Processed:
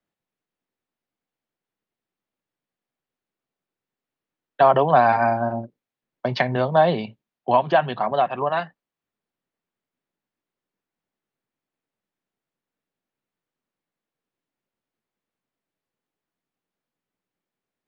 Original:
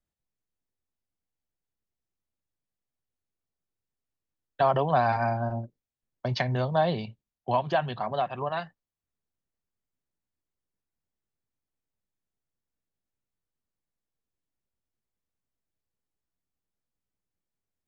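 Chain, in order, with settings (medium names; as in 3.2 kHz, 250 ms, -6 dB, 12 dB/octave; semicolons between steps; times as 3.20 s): three-band isolator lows -19 dB, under 150 Hz, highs -13 dB, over 3.7 kHz; trim +8 dB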